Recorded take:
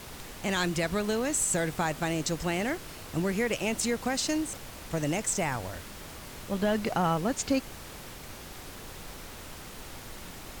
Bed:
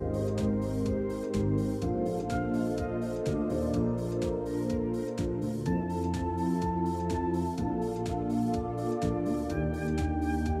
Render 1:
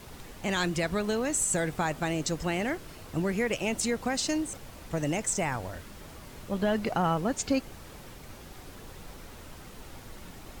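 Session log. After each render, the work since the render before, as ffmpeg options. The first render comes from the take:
-af "afftdn=nr=6:nf=-44"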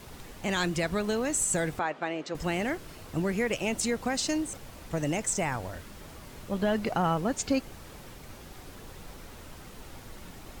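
-filter_complex "[0:a]asettb=1/sr,asplit=3[a][b][c];[a]atrim=end=1.794[d];[b]atrim=start=1.79:end=2.35,asetpts=PTS-STARTPTS,afade=t=in:d=0.004:c=qsin,afade=t=out:st=0.556:d=0.004:c=qsin,highpass=340,lowpass=2.9k[e];[c]atrim=start=2.346[f];[d][e]acrossfade=d=0.004:c1=hsin:c2=qsin[g];[g][f]acrossfade=d=0.004:c1=qsin:c2=hsin"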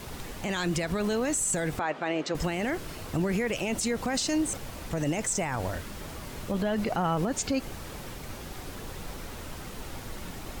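-af "acontrast=57,alimiter=limit=-19.5dB:level=0:latency=1:release=48"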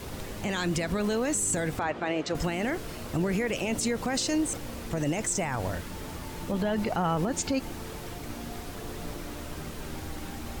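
-filter_complex "[1:a]volume=-13dB[a];[0:a][a]amix=inputs=2:normalize=0"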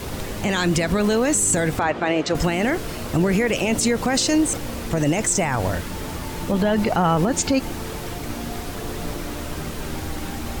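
-af "volume=8.5dB"

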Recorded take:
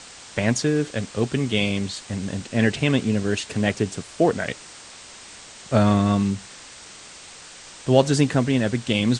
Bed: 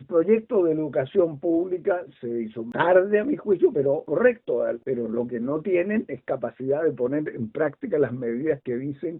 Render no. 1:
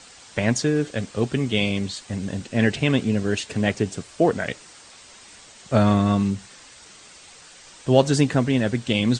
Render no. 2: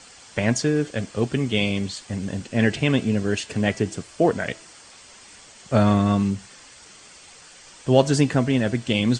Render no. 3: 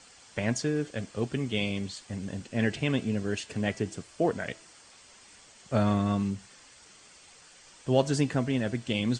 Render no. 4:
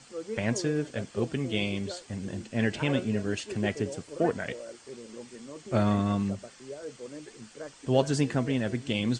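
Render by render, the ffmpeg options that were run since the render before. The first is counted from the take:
-af "afftdn=nr=6:nf=-43"
-af "bandreject=f=3.8k:w=15,bandreject=f=327.8:t=h:w=4,bandreject=f=655.6:t=h:w=4,bandreject=f=983.4:t=h:w=4,bandreject=f=1.3112k:t=h:w=4,bandreject=f=1.639k:t=h:w=4,bandreject=f=1.9668k:t=h:w=4,bandreject=f=2.2946k:t=h:w=4,bandreject=f=2.6224k:t=h:w=4,bandreject=f=2.9502k:t=h:w=4,bandreject=f=3.278k:t=h:w=4,bandreject=f=3.6058k:t=h:w=4,bandreject=f=3.9336k:t=h:w=4,bandreject=f=4.2614k:t=h:w=4,bandreject=f=4.5892k:t=h:w=4,bandreject=f=4.917k:t=h:w=4,bandreject=f=5.2448k:t=h:w=4"
-af "volume=-7.5dB"
-filter_complex "[1:a]volume=-17.5dB[a];[0:a][a]amix=inputs=2:normalize=0"

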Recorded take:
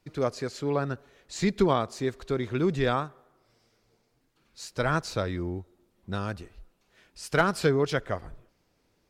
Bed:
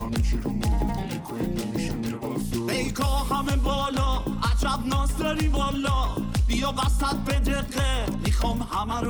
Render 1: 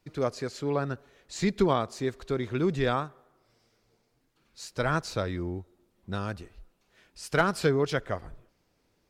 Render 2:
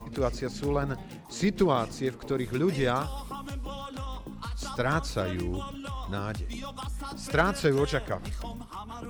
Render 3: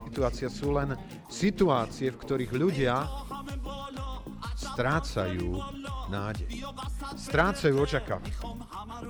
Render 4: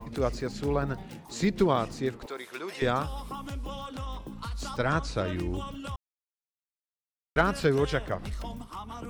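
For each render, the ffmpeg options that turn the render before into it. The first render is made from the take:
-af "volume=-1dB"
-filter_complex "[1:a]volume=-13dB[a];[0:a][a]amix=inputs=2:normalize=0"
-af "adynamicequalizer=threshold=0.00316:dfrequency=4800:dqfactor=0.7:tfrequency=4800:tqfactor=0.7:attack=5:release=100:ratio=0.375:range=2.5:mode=cutabove:tftype=highshelf"
-filter_complex "[0:a]asettb=1/sr,asplit=3[a][b][c];[a]atrim=end=2.264[d];[b]atrim=start=2.26:end=2.82,asetpts=PTS-STARTPTS,afade=t=in:d=0.004:c=qsin,afade=t=out:st=0.556:d=0.004:c=qsin,highpass=710[e];[c]atrim=start=2.816[f];[d][e]acrossfade=d=0.004:c1=hsin:c2=qsin[g];[g][f]acrossfade=d=0.004:c1=qsin:c2=hsin,asettb=1/sr,asplit=3[h][i][j];[h]atrim=end=4.774[k];[i]atrim=start=4.77:end=5.28,asetpts=PTS-STARTPTS,afade=t=in:d=0.004:c=qsin,afade=t=out:st=0.506:d=0.004:c=qsin,lowpass=f=9.2k:w=0.5412,lowpass=f=9.2k:w=1.3066[l];[j]atrim=start=5.276[m];[k][l]acrossfade=d=0.004:c1=hsin:c2=qsin[n];[n][m]acrossfade=d=0.004:c1=qsin:c2=hsin,asplit=3[o][p][q];[o]atrim=end=5.96,asetpts=PTS-STARTPTS,afade=t=out:st=5.956:d=0.004:c=hsin[r];[p]atrim=start=5.96:end=7.36,asetpts=PTS-STARTPTS,volume=0[s];[q]atrim=start=7.36,asetpts=PTS-STARTPTS,afade=t=in:d=0.004:c=hsin[t];[r][s][t]concat=n=3:v=0:a=1"

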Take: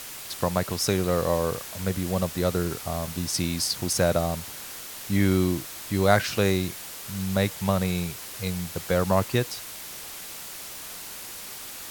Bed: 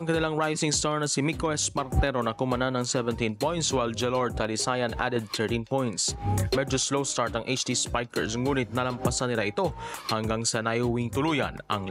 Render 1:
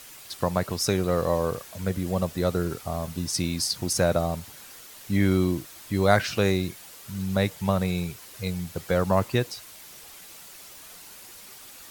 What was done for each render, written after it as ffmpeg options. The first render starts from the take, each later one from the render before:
-af "afftdn=nr=8:nf=-39"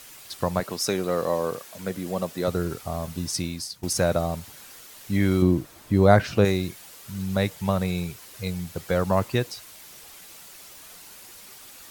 -filter_complex "[0:a]asettb=1/sr,asplit=3[a][b][c];[a]atrim=end=0.604[d];[b]atrim=start=0.6:end=2.48,asetpts=PTS-STARTPTS,afade=t=in:d=0.004:c=qsin,afade=t=out:st=1.876:d=0.004:c=qsin,highpass=190[e];[c]atrim=start=2.476[f];[d][e]acrossfade=d=0.004:c1=hsin:c2=qsin[g];[g][f]acrossfade=d=0.004:c1=qsin:c2=hsin,asettb=1/sr,asplit=3[h][i][j];[h]atrim=end=5.424[k];[i]atrim=start=5.42:end=6.45,asetpts=PTS-STARTPTS,afade=t=in:d=0.004:c=qsin,afade=t=out:st=1.026:d=0.004:c=qsin,tiltshelf=f=1.3k:g=6[l];[j]atrim=start=6.446[m];[k][l]acrossfade=d=0.004:c1=hsin:c2=qsin[n];[n][m]acrossfade=d=0.004:c1=qsin:c2=hsin,asplit=2[o][p];[o]atrim=end=3.83,asetpts=PTS-STARTPTS,afade=t=out:st=3.3:d=0.53:silence=0.149624[q];[p]atrim=start=3.83,asetpts=PTS-STARTPTS,afade=t=in:d=0.004:c=hsin:silence=0.149624[r];[q][r]concat=n=2:v=0:a=1"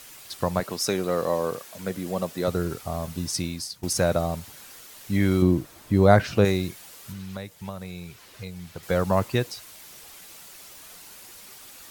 -filter_complex "[0:a]asettb=1/sr,asplit=3[a][b][c];[a]atrim=end=7.124[d];[b]atrim=start=7.12:end=8.83,asetpts=PTS-STARTPTS,afade=t=in:d=0.004:c=qsin,afade=t=out:st=1.706:d=0.004:c=qsin,acrossover=split=930|4900[e][f][g];[e]acompressor=threshold=-36dB:ratio=4[h];[f]acompressor=threshold=-45dB:ratio=4[i];[g]acompressor=threshold=-54dB:ratio=4[j];[h][i][j]amix=inputs=3:normalize=0[k];[c]atrim=start=8.826[l];[d][k]acrossfade=d=0.004:c1=hsin:c2=qsin[m];[m][l]acrossfade=d=0.004:c1=qsin:c2=hsin"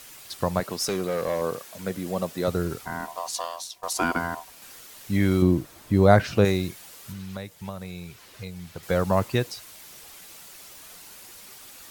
-filter_complex "[0:a]asettb=1/sr,asplit=3[a][b][c];[a]atrim=end=0.734[d];[b]atrim=start=0.73:end=1.42,asetpts=PTS-STARTPTS,afade=t=in:d=0.004:c=qsin,afade=t=out:st=0.686:d=0.004:c=qsin,volume=21dB,asoftclip=hard,volume=-21dB[e];[c]atrim=start=1.416[f];[d][e]acrossfade=d=0.004:c1=hsin:c2=qsin[g];[g][f]acrossfade=d=0.004:c1=qsin:c2=hsin,asettb=1/sr,asplit=3[h][i][j];[h]atrim=end=2.854[k];[i]atrim=start=2.85:end=4.62,asetpts=PTS-STARTPTS,afade=t=in:d=0.004:c=qsin,afade=t=out:st=1.766:d=0.004:c=qsin,aeval=exprs='val(0)*sin(2*PI*850*n/s)':c=same[l];[j]atrim=start=4.616[m];[k][l]acrossfade=d=0.004:c1=hsin:c2=qsin[n];[n][m]acrossfade=d=0.004:c1=qsin:c2=hsin"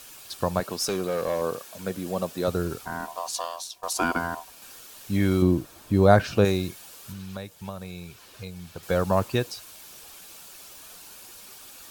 -af "equalizer=f=140:w=1.5:g=-2.5,bandreject=f=2k:w=7.8"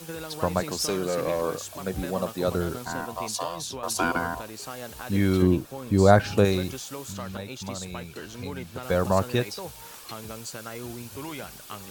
-filter_complex "[1:a]volume=-11.5dB[a];[0:a][a]amix=inputs=2:normalize=0"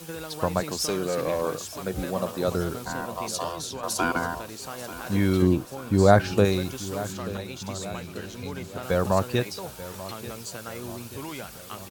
-af "aecho=1:1:886|1772|2658|3544|4430:0.168|0.0923|0.0508|0.0279|0.0154"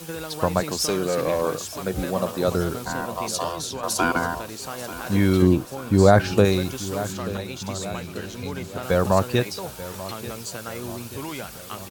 -af "volume=3.5dB,alimiter=limit=-3dB:level=0:latency=1"

